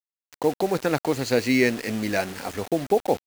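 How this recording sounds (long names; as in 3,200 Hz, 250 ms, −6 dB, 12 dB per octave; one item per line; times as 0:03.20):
a quantiser's noise floor 6 bits, dither none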